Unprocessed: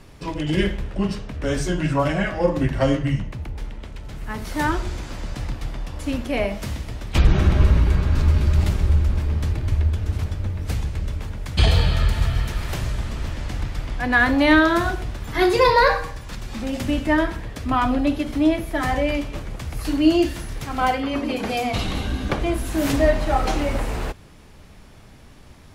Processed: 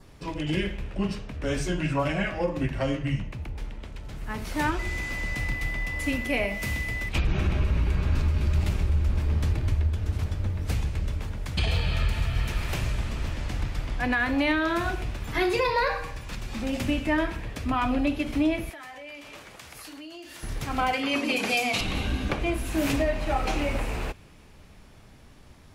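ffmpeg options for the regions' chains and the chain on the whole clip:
ffmpeg -i in.wav -filter_complex "[0:a]asettb=1/sr,asplit=3[link_01][link_02][link_03];[link_01]atrim=end=4.794[link_04];[link_02]atrim=start=4.79:end=7.09,asetpts=PTS-STARTPTS,afade=type=in:duration=0.004:curve=qsin,afade=type=out:start_time=2.296:duration=0.004:curve=qsin,highshelf=frequency=11000:gain=11.5,aeval=exprs='val(0)+0.0282*sin(2*PI*2000*n/s)':channel_layout=same[link_05];[link_03]atrim=start=7.086[link_06];[link_04][link_05]acrossfade=duration=0.004:curve1=hsin:curve2=qsin[link_07];[link_07][link_06]acrossfade=duration=0.004:curve1=qsin:curve2=hsin,asettb=1/sr,asplit=3[link_08][link_09][link_10];[link_08]atrim=end=18.704[link_11];[link_09]atrim=start=18.7:end=20.43,asetpts=PTS-STARTPTS,afade=type=in:duration=0.004:curve=qsin,afade=type=out:start_time=1.726:duration=0.004:curve=qsin,highpass=frequency=1000:poles=1,acompressor=threshold=-37dB:ratio=12:attack=3.2:release=140:knee=1:detection=peak[link_12];[link_10]atrim=start=20.426[link_13];[link_11][link_12]acrossfade=duration=0.004:curve1=hsin:curve2=qsin[link_14];[link_14][link_13]acrossfade=duration=0.004:curve1=qsin:curve2=hsin,asettb=1/sr,asplit=3[link_15][link_16][link_17];[link_15]atrim=end=20.934[link_18];[link_16]atrim=start=20.93:end=21.81,asetpts=PTS-STARTPTS,afade=type=in:duration=0.004:curve=qsin,afade=type=out:start_time=0.876:duration=0.004:curve=qsin,highpass=160,equalizer=frequency=7900:width=0.37:gain=9.5[link_19];[link_17]atrim=start=21.806[link_20];[link_18][link_19]acrossfade=duration=0.004:curve1=hsin:curve2=qsin[link_21];[link_21][link_20]acrossfade=duration=0.004:curve1=qsin:curve2=hsin,adynamicequalizer=threshold=0.00501:dfrequency=2500:dqfactor=3.7:tfrequency=2500:tqfactor=3.7:attack=5:release=100:ratio=0.375:range=4:mode=boostabove:tftype=bell,dynaudnorm=framelen=700:gausssize=13:maxgain=11.5dB,alimiter=limit=-10.5dB:level=0:latency=1:release=296,volume=-5dB" out.wav

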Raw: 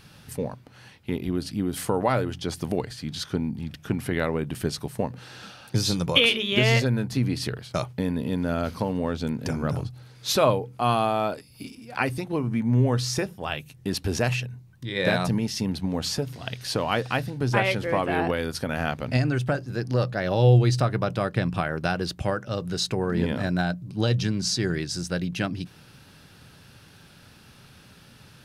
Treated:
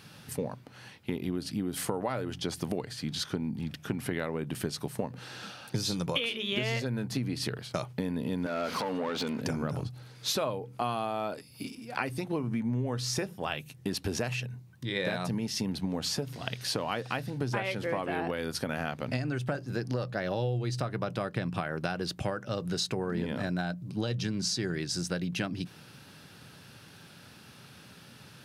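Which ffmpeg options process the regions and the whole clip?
ffmpeg -i in.wav -filter_complex "[0:a]asettb=1/sr,asplit=3[link_01][link_02][link_03];[link_01]atrim=end=8.464[link_04];[link_02]atrim=start=8.46:end=9.41,asetpts=PTS-STARTPTS,afade=type=in:duration=0.004:curve=qsin,afade=type=out:start_time=0.946:duration=0.004:curve=qsin,highpass=frequency=160:poles=1,acompressor=threshold=-32dB:ratio=4:attack=3.2:release=140:knee=1:detection=peak,asplit=2[link_05][link_06];[link_06]highpass=frequency=720:poles=1,volume=23dB,asoftclip=type=tanh:threshold=-20.5dB[link_07];[link_05][link_07]amix=inputs=2:normalize=0,lowpass=frequency=3500:poles=1,volume=-6dB[link_08];[link_03]atrim=start=9.406[link_09];[link_04][link_08]acrossfade=duration=0.004:curve1=hsin:curve2=qsin[link_10];[link_10][link_09]acrossfade=duration=0.004:curve1=qsin:curve2=hsin,highpass=110,acompressor=threshold=-28dB:ratio=6" out.wav

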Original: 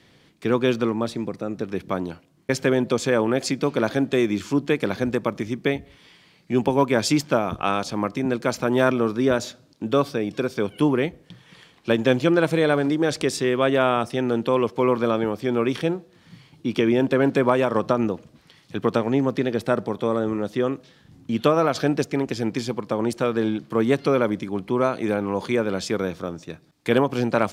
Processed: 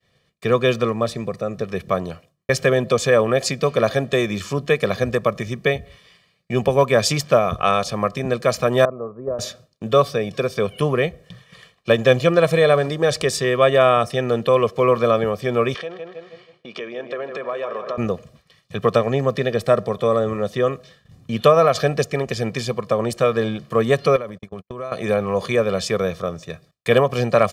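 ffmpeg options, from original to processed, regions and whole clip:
ffmpeg -i in.wav -filter_complex "[0:a]asettb=1/sr,asplit=3[link_01][link_02][link_03];[link_01]atrim=end=8.854[link_04];[link_02]atrim=start=8.85:end=9.39,asetpts=PTS-STARTPTS,afade=type=in:duration=0.004:curve=qsin,afade=type=out:start_time=0.536:duration=0.004:curve=qsin,agate=range=-9dB:threshold=-17dB:ratio=16:release=100:detection=peak,lowpass=frequency=1000:width=0.5412,lowpass=frequency=1000:width=1.3066,lowshelf=frequency=240:gain=-6[link_05];[link_03]atrim=start=9.386[link_06];[link_04][link_05]acrossfade=duration=0.004:curve1=hsin:curve2=qsin[link_07];[link_07][link_06]acrossfade=duration=0.004:curve1=qsin:curve2=hsin,asettb=1/sr,asplit=3[link_08][link_09][link_10];[link_08]atrim=end=15.744[link_11];[link_09]atrim=start=15.74:end=17.98,asetpts=PTS-STARTPTS,afade=type=in:duration=0.004:curve=qsin,afade=type=out:start_time=2.236:duration=0.004:curve=qsin,asplit=2[link_12][link_13];[link_13]adelay=158,lowpass=frequency=3300:poles=1,volume=-9dB,asplit=2[link_14][link_15];[link_15]adelay=158,lowpass=frequency=3300:poles=1,volume=0.48,asplit=2[link_16][link_17];[link_17]adelay=158,lowpass=frequency=3300:poles=1,volume=0.48,asplit=2[link_18][link_19];[link_19]adelay=158,lowpass=frequency=3300:poles=1,volume=0.48,asplit=2[link_20][link_21];[link_21]adelay=158,lowpass=frequency=3300:poles=1,volume=0.48[link_22];[link_12][link_14][link_16][link_18][link_20][link_22]amix=inputs=6:normalize=0,atrim=end_sample=98784,acompressor=threshold=-29dB:ratio=3:attack=3.2:release=140:knee=1:detection=peak,highpass=340,lowpass=4400[link_23];[link_10]atrim=start=17.976[link_24];[link_11][link_23]acrossfade=duration=0.004:curve1=hsin:curve2=qsin[link_25];[link_25][link_24]acrossfade=duration=0.004:curve1=qsin:curve2=hsin,asettb=1/sr,asplit=3[link_26][link_27][link_28];[link_26]atrim=end=24.164[link_29];[link_27]atrim=start=24.16:end=24.92,asetpts=PTS-STARTPTS,afade=type=in:duration=0.004:curve=qsin,afade=type=out:start_time=0.756:duration=0.004:curve=qsin,agate=range=-52dB:threshold=-29dB:ratio=16:release=100:detection=peak,acompressor=threshold=-29dB:ratio=8:attack=3.2:release=140:knee=1:detection=peak[link_30];[link_28]atrim=start=24.916[link_31];[link_29][link_30]acrossfade=duration=0.004:curve1=hsin:curve2=qsin[link_32];[link_32][link_31]acrossfade=duration=0.004:curve1=qsin:curve2=hsin,agate=range=-33dB:threshold=-46dB:ratio=3:detection=peak,aecho=1:1:1.7:0.78,volume=2.5dB" out.wav

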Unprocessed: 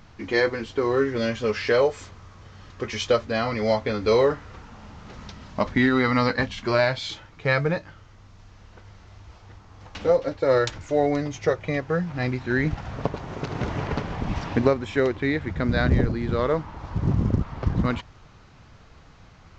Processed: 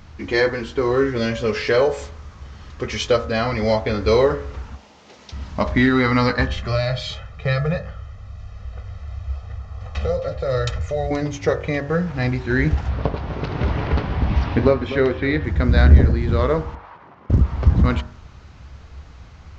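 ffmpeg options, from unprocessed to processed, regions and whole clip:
ffmpeg -i in.wav -filter_complex "[0:a]asettb=1/sr,asplit=3[link_01][link_02][link_03];[link_01]atrim=end=4.754[link_04];[link_02]atrim=start=4.75:end=5.32,asetpts=PTS-STARTPTS,afade=type=in:duration=0.004:curve=qsin,afade=type=out:start_time=0.566:duration=0.004:curve=qsin,highpass=410,equalizer=frequency=1300:width_type=o:width=1.2:gain=-9[link_05];[link_03]atrim=start=5.316[link_06];[link_04][link_05]acrossfade=duration=0.004:curve1=hsin:curve2=qsin[link_07];[link_07][link_06]acrossfade=duration=0.004:curve1=qsin:curve2=hsin,asettb=1/sr,asplit=3[link_08][link_09][link_10];[link_08]atrim=end=6.474[link_11];[link_09]atrim=start=6.47:end=11.11,asetpts=PTS-STARTPTS,afade=type=in:duration=0.004:curve=qsin,afade=type=out:start_time=4.636:duration=0.004:curve=qsin,highshelf=frequency=4200:gain=-8.5,acrossover=split=150|3000[link_12][link_13][link_14];[link_13]acompressor=threshold=-28dB:ratio=4:attack=3.2:release=140:knee=2.83:detection=peak[link_15];[link_12][link_15][link_14]amix=inputs=3:normalize=0,aecho=1:1:1.6:0.94,atrim=end_sample=204624[link_16];[link_10]atrim=start=11.106[link_17];[link_11][link_16]acrossfade=duration=0.004:curve1=hsin:curve2=qsin[link_18];[link_18][link_17]acrossfade=duration=0.004:curve1=qsin:curve2=hsin,asettb=1/sr,asplit=3[link_19][link_20][link_21];[link_19]atrim=end=12.894[link_22];[link_20]atrim=start=12.89:end=15.44,asetpts=PTS-STARTPTS,afade=type=in:duration=0.004:curve=qsin,afade=type=out:start_time=2.546:duration=0.004:curve=qsin,lowpass=frequency=4900:width=0.5412,lowpass=frequency=4900:width=1.3066,asplit=2[link_23][link_24];[link_24]adelay=20,volume=-13dB[link_25];[link_23][link_25]amix=inputs=2:normalize=0,atrim=end_sample=112455,aecho=1:1:249:0.211,atrim=end_sample=112455[link_26];[link_21]atrim=start=15.436[link_27];[link_22][link_26]acrossfade=duration=0.004:curve1=hsin:curve2=qsin[link_28];[link_28][link_27]acrossfade=duration=0.004:curve1=qsin:curve2=hsin,asettb=1/sr,asplit=3[link_29][link_30][link_31];[link_29]atrim=end=16.754[link_32];[link_30]atrim=start=16.75:end=17.3,asetpts=PTS-STARTPTS,afade=type=in:duration=0.004:curve=qsin,afade=type=out:start_time=0.546:duration=0.004:curve=qsin,acompressor=threshold=-26dB:ratio=6:attack=3.2:release=140:knee=1:detection=peak,highpass=790,lowpass=2200[link_33];[link_31]atrim=start=17.296[link_34];[link_32][link_33]acrossfade=duration=0.004:curve1=hsin:curve2=qsin[link_35];[link_35][link_34]acrossfade=duration=0.004:curve1=qsin:curve2=hsin,equalizer=frequency=67:width=2.1:gain=14.5,bandreject=frequency=47.35:width_type=h:width=4,bandreject=frequency=94.7:width_type=h:width=4,bandreject=frequency=142.05:width_type=h:width=4,bandreject=frequency=189.4:width_type=h:width=4,bandreject=frequency=236.75:width_type=h:width=4,bandreject=frequency=284.1:width_type=h:width=4,bandreject=frequency=331.45:width_type=h:width=4,bandreject=frequency=378.8:width_type=h:width=4,bandreject=frequency=426.15:width_type=h:width=4,bandreject=frequency=473.5:width_type=h:width=4,bandreject=frequency=520.85:width_type=h:width=4,bandreject=frequency=568.2:width_type=h:width=4,bandreject=frequency=615.55:width_type=h:width=4,bandreject=frequency=662.9:width_type=h:width=4,bandreject=frequency=710.25:width_type=h:width=4,bandreject=frequency=757.6:width_type=h:width=4,bandreject=frequency=804.95:width_type=h:width=4,bandreject=frequency=852.3:width_type=h:width=4,bandreject=frequency=899.65:width_type=h:width=4,bandreject=frequency=947:width_type=h:width=4,bandreject=frequency=994.35:width_type=h:width=4,bandreject=frequency=1041.7:width_type=h:width=4,bandreject=frequency=1089.05:width_type=h:width=4,bandreject=frequency=1136.4:width_type=h:width=4,bandreject=frequency=1183.75:width_type=h:width=4,bandreject=frequency=1231.1:width_type=h:width=4,bandreject=frequency=1278.45:width_type=h:width=4,bandreject=frequency=1325.8:width_type=h:width=4,bandreject=frequency=1373.15:width_type=h:width=4,bandreject=frequency=1420.5:width_type=h:width=4,bandreject=frequency=1467.85:width_type=h:width=4,bandreject=frequency=1515.2:width_type=h:width=4,bandreject=frequency=1562.55:width_type=h:width=4,bandreject=frequency=1609.9:width_type=h:width=4,bandreject=frequency=1657.25:width_type=h:width=4,bandreject=frequency=1704.6:width_type=h:width=4,bandreject=frequency=1751.95:width_type=h:width=4,bandreject=frequency=1799.3:width_type=h:width=4,bandreject=frequency=1846.65:width_type=h:width=4,acontrast=24,volume=-1dB" out.wav

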